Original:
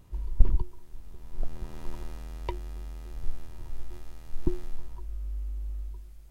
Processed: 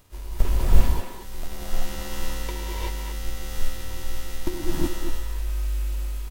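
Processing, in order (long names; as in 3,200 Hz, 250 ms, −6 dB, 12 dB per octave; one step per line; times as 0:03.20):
spectral envelope flattened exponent 0.6
far-end echo of a speakerphone 230 ms, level −6 dB
reverb whose tail is shaped and stops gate 410 ms rising, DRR −7.5 dB
level −4 dB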